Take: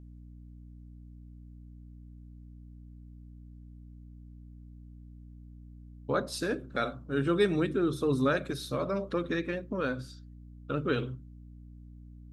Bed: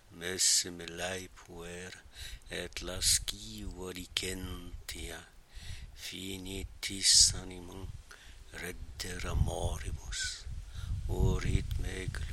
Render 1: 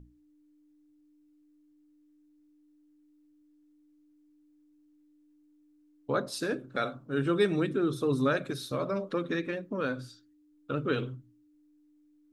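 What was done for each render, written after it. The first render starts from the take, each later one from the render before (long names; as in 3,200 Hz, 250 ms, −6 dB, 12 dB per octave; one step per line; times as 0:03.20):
mains-hum notches 60/120/180/240 Hz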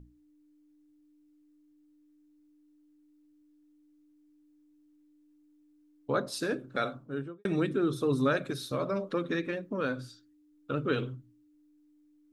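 0:06.92–0:07.45: fade out and dull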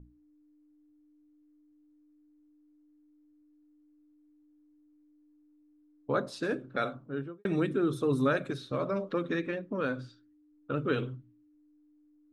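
low-pass that shuts in the quiet parts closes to 1,400 Hz, open at −25.5 dBFS
dynamic equaliser 4,900 Hz, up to −5 dB, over −54 dBFS, Q 1.4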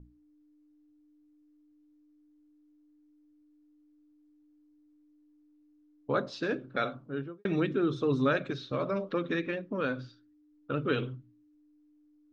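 Butterworth low-pass 6,300 Hz 36 dB per octave
dynamic equaliser 2,900 Hz, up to +4 dB, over −53 dBFS, Q 1.4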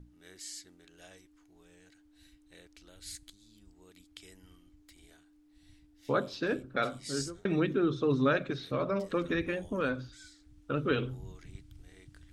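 mix in bed −17.5 dB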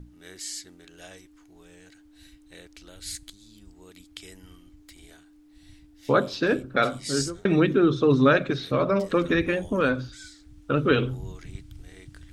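level +8.5 dB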